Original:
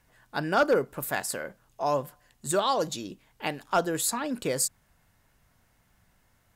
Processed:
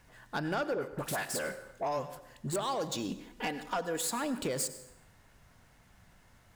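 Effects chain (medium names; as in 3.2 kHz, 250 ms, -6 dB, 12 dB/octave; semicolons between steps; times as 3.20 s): median filter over 3 samples; 3.08–4.02 s: comb 4.1 ms, depth 78%; compression 6:1, threshold -34 dBFS, peak gain reduction 16 dB; 0.74–2.56 s: phase dispersion highs, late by 59 ms, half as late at 950 Hz; saturation -30.5 dBFS, distortion -16 dB; plate-style reverb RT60 0.89 s, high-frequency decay 0.75×, pre-delay 80 ms, DRR 13 dB; trim +5 dB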